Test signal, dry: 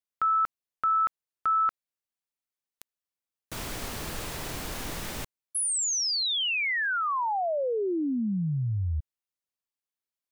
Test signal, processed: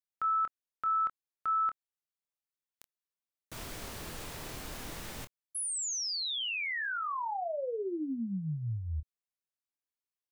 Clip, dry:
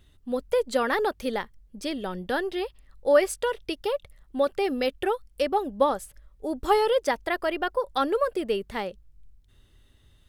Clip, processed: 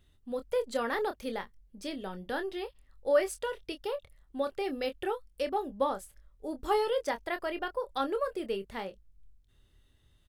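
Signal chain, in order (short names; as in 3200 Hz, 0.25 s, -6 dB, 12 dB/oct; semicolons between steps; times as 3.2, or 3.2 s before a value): doubler 26 ms -9 dB; gain -7.5 dB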